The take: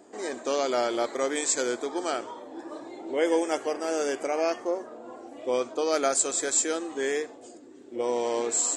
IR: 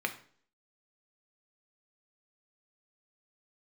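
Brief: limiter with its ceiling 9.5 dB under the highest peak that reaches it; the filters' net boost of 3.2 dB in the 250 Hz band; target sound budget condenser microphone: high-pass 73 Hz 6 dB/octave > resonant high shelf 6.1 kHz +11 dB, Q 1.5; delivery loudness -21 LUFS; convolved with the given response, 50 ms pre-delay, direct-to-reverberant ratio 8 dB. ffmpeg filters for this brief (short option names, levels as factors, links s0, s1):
-filter_complex "[0:a]equalizer=f=250:t=o:g=5,alimiter=limit=0.106:level=0:latency=1,asplit=2[s0][s1];[1:a]atrim=start_sample=2205,adelay=50[s2];[s1][s2]afir=irnorm=-1:irlink=0,volume=0.2[s3];[s0][s3]amix=inputs=2:normalize=0,highpass=f=73:p=1,highshelf=f=6100:t=q:w=1.5:g=11,volume=1.5"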